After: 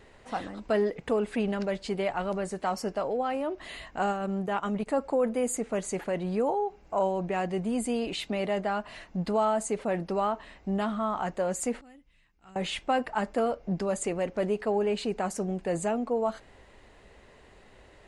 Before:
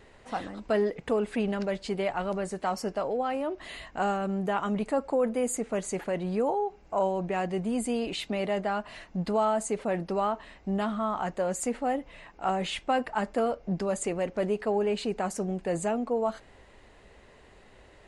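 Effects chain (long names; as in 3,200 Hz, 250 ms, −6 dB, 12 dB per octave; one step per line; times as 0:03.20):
0:04.06–0:04.87: transient designer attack −6 dB, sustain −10 dB
0:11.81–0:12.56: guitar amp tone stack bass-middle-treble 6-0-2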